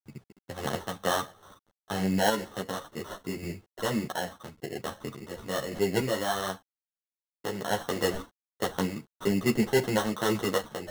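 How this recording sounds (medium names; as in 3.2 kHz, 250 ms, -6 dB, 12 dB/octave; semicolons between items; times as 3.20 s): aliases and images of a low sample rate 2.4 kHz, jitter 0%; random-step tremolo, depth 55%; a quantiser's noise floor 10-bit, dither none; a shimmering, thickened sound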